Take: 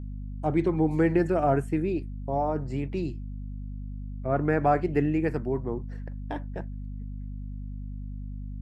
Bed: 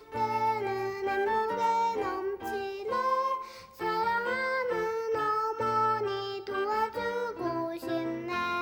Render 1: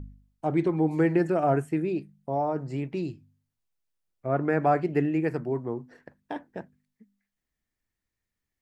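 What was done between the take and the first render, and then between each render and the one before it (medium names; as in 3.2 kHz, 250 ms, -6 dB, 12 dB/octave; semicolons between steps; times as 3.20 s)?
de-hum 50 Hz, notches 5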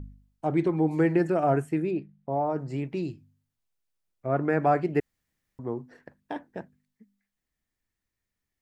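1.91–2.50 s: low-pass 2.8 kHz; 5.00–5.59 s: room tone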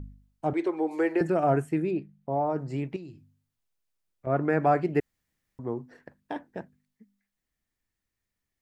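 0.53–1.21 s: high-pass 340 Hz 24 dB/octave; 2.96–4.27 s: compression 5:1, threshold -40 dBFS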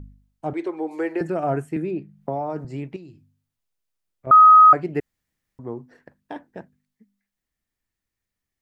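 1.76–2.65 s: three bands compressed up and down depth 100%; 4.31–4.73 s: bleep 1.26 kHz -6.5 dBFS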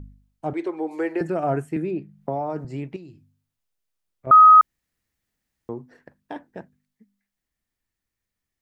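4.61–5.69 s: room tone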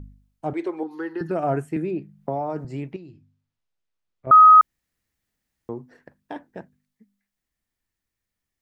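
0.83–1.31 s: static phaser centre 2.3 kHz, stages 6; 2.93–4.32 s: distance through air 97 m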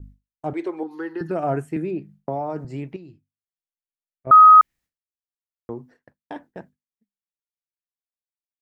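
expander -42 dBFS; dynamic bell 2.3 kHz, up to +6 dB, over -30 dBFS, Q 1.5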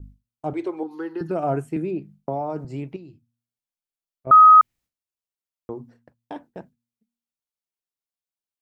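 peaking EQ 1.8 kHz -7 dB 0.42 oct; de-hum 117.8 Hz, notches 2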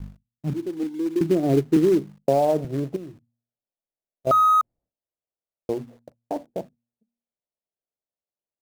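low-pass sweep 190 Hz -> 620 Hz, 0.40–2.50 s; in parallel at -7.5 dB: companded quantiser 4-bit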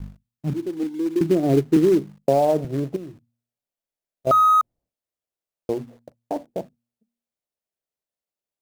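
trim +1.5 dB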